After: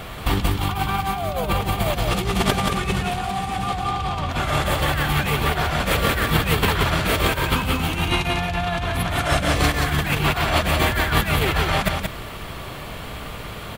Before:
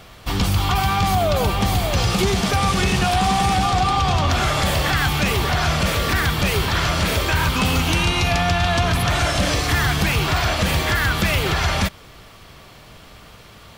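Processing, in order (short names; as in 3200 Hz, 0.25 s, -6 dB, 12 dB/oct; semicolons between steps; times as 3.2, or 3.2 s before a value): bell 5500 Hz -9 dB 0.78 oct; negative-ratio compressor -24 dBFS, ratio -0.5; echo 0.178 s -4 dB; gain +3 dB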